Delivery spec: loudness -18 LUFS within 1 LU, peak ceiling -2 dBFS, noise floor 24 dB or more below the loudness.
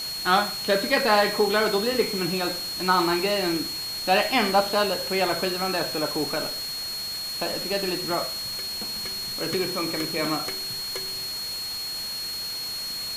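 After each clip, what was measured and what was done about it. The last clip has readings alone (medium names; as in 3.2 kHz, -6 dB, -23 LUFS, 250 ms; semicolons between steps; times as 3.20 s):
steady tone 4.3 kHz; tone level -30 dBFS; noise floor -32 dBFS; noise floor target -49 dBFS; loudness -25.0 LUFS; peak level -7.0 dBFS; loudness target -18.0 LUFS
-> band-stop 4.3 kHz, Q 30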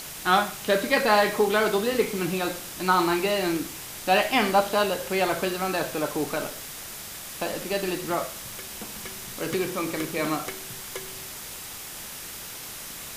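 steady tone not found; noise floor -39 dBFS; noise floor target -51 dBFS
-> noise reduction 12 dB, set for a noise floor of -39 dBFS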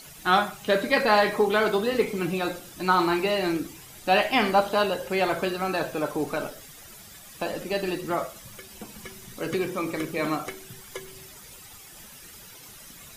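noise floor -47 dBFS; noise floor target -50 dBFS
-> noise reduction 6 dB, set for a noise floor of -47 dBFS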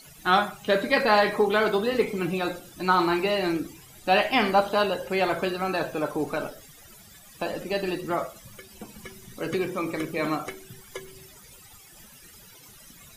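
noise floor -50 dBFS; loudness -25.5 LUFS; peak level -8.0 dBFS; loudness target -18.0 LUFS
-> trim +7.5 dB; peak limiter -2 dBFS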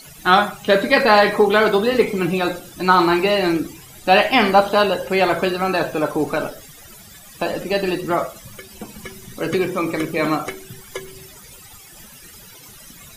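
loudness -18.0 LUFS; peak level -2.0 dBFS; noise floor -43 dBFS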